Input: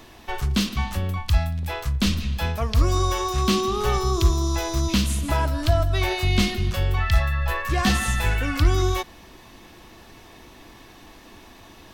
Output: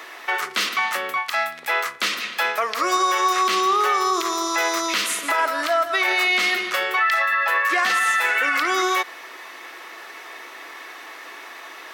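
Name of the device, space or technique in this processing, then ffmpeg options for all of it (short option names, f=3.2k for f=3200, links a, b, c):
laptop speaker: -af "highpass=f=400:w=0.5412,highpass=f=400:w=1.3066,equalizer=f=1.3k:t=o:w=0.42:g=9,equalizer=f=2k:t=o:w=0.56:g=10.5,alimiter=limit=-17.5dB:level=0:latency=1:release=71,volume=6dB"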